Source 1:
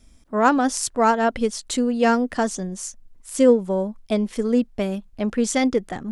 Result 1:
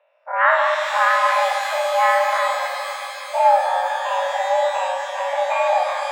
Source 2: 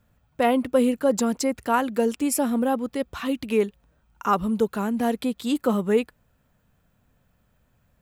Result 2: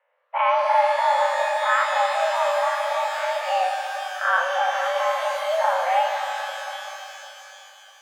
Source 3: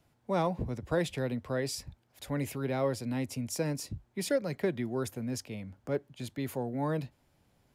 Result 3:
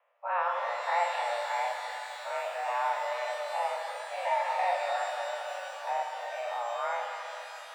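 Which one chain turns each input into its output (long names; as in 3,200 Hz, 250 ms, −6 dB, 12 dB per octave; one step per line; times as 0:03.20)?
every bin's largest magnitude spread in time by 120 ms
single-sideband voice off tune +350 Hz 200–2,500 Hz
reverb with rising layers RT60 3.5 s, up +12 semitones, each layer −8 dB, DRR 2.5 dB
level −4 dB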